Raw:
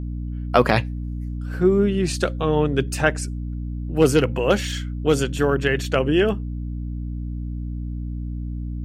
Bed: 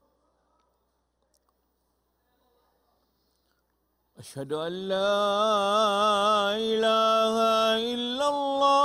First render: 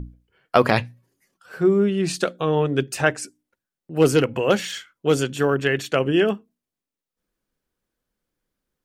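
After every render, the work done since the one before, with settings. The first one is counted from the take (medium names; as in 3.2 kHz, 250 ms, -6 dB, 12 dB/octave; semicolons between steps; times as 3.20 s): hum notches 60/120/180/240/300 Hz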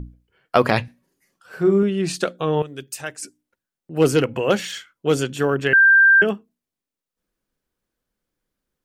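0.83–1.83 s: doubling 46 ms -8 dB; 2.62–3.23 s: pre-emphasis filter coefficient 0.8; 5.73–6.22 s: bleep 1.58 kHz -9 dBFS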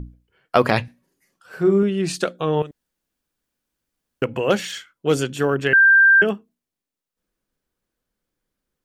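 2.71–4.22 s: room tone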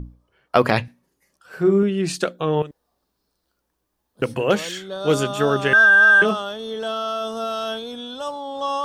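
add bed -3.5 dB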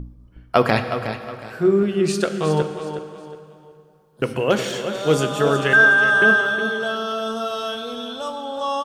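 feedback delay 365 ms, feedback 31%, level -9.5 dB; plate-style reverb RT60 2.6 s, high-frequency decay 0.8×, DRR 8.5 dB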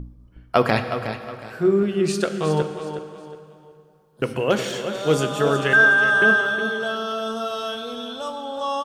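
trim -1.5 dB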